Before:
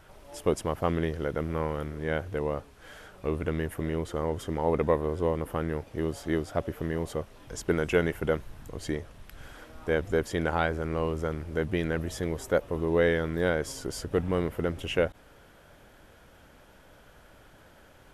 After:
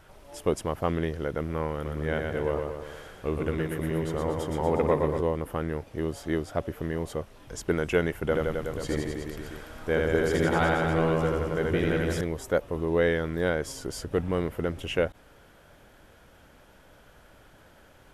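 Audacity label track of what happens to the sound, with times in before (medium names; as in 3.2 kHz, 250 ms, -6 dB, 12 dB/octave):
1.730000	5.210000	feedback delay 119 ms, feedback 56%, level -4 dB
8.230000	12.210000	reverse bouncing-ball echo first gap 80 ms, each gap 1.1×, echoes 6, each echo -2 dB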